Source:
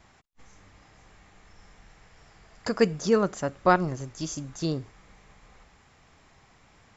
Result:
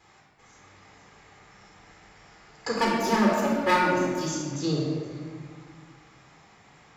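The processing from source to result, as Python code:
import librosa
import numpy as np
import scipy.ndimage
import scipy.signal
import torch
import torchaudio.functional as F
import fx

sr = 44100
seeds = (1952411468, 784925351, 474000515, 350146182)

y = fx.lower_of_two(x, sr, delay_ms=3.4, at=(2.73, 4.19))
y = fx.highpass(y, sr, hz=280.0, slope=6)
y = y + 10.0 ** (-22.0 / 20.0) * np.pad(y, (int(472 * sr / 1000.0), 0))[:len(y)]
y = fx.room_shoebox(y, sr, seeds[0], volume_m3=1900.0, walls='mixed', distance_m=4.0)
y = y * librosa.db_to_amplitude(-2.0)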